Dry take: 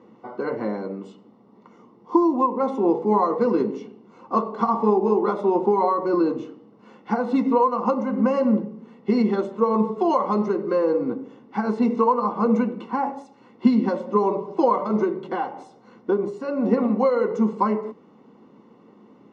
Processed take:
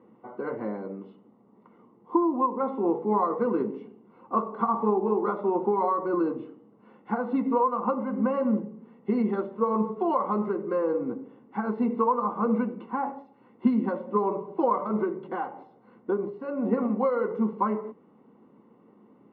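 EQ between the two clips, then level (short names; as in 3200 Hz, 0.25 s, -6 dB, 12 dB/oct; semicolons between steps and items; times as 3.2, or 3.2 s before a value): LPF 3200 Hz 12 dB/oct; dynamic EQ 1300 Hz, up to +5 dB, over -37 dBFS, Q 2.3; air absorption 270 m; -5.0 dB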